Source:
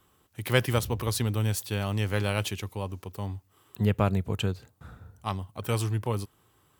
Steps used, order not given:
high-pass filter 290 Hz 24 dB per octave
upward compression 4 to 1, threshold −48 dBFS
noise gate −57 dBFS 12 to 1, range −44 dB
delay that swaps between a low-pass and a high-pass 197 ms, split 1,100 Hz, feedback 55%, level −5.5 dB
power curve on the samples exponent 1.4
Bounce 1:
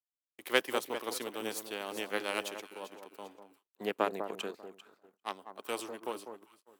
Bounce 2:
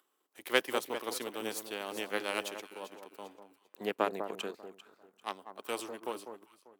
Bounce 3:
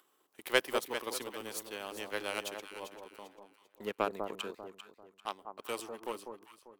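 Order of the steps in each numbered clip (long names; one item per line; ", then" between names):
upward compression, then delay that swaps between a low-pass and a high-pass, then power curve on the samples, then noise gate, then high-pass filter
noise gate, then delay that swaps between a low-pass and a high-pass, then power curve on the samples, then upward compression, then high-pass filter
high-pass filter, then power curve on the samples, then noise gate, then upward compression, then delay that swaps between a low-pass and a high-pass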